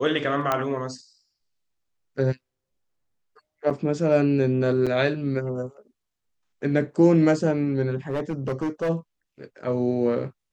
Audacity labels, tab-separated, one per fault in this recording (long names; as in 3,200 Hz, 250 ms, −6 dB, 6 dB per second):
0.520000	0.520000	click −9 dBFS
3.700000	3.710000	drop-out 5.7 ms
4.860000	4.870000	drop-out 6.6 ms
8.090000	8.900000	clipping −22 dBFS